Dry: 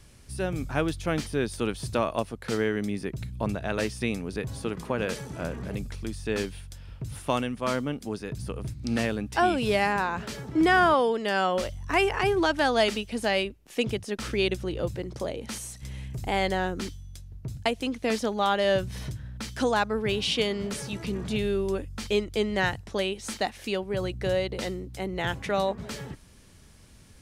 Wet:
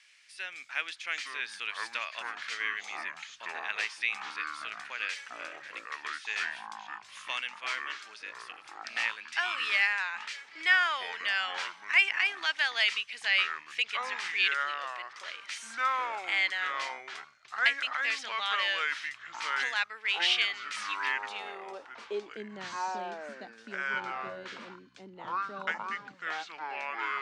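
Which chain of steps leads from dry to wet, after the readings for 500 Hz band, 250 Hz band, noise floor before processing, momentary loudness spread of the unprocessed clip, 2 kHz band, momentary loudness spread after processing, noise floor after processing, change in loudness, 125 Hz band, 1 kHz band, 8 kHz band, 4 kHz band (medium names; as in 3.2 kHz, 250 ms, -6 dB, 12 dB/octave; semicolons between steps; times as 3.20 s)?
-18.5 dB, under -20 dB, -52 dBFS, 12 LU, +3.0 dB, 16 LU, -54 dBFS, -3.0 dB, under -25 dB, -5.5 dB, -6.5 dB, +1.0 dB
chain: band-pass sweep 2.1 kHz -> 230 Hz, 21.05–22.46 s; ever faster or slower copies 702 ms, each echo -6 st, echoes 2; frequency weighting ITU-R 468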